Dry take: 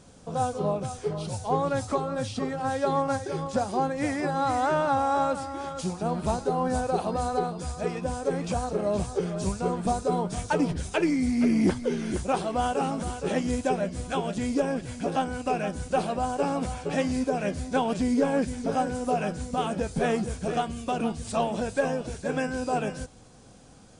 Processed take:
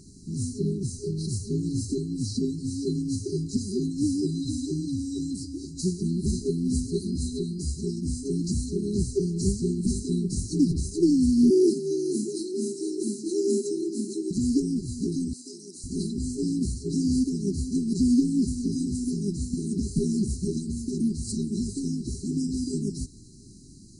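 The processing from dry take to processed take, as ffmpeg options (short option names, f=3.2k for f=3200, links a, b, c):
-filter_complex "[0:a]asettb=1/sr,asplit=3[a][b][c];[a]atrim=end=11.504[d];[b]atrim=start=11.5:end=14.31,asetpts=PTS-STARTPTS,afade=t=in:d=0.004:c=qsin,afade=t=out:st=2.806:d=0.004:c=qsin,afreqshift=150[e];[c]atrim=start=14.306[f];[d][e]acrossfade=d=0.004:c1=hsin:c2=qsin[g];[g][f]acrossfade=d=0.004:c1=qsin:c2=hsin,asettb=1/sr,asplit=3[h][i][j];[h]atrim=end=15.334[k];[i]atrim=start=15.33:end=15.84,asetpts=PTS-STARTPTS,afade=t=in:d=0.004:c=qsin,afade=t=out:st=0.506:d=0.004:c=qsin,highpass=630[l];[j]atrim=start=15.836[m];[k][l]acrossfade=d=0.004:c1=hsin:c2=qsin[n];[n][m]acrossfade=d=0.004:c1=qsin:c2=hsin,afftfilt=real='re*(1-between(b*sr/4096,410,3900))':imag='im*(1-between(b*sr/4096,410,3900))':win_size=4096:overlap=0.75,volume=4.5dB"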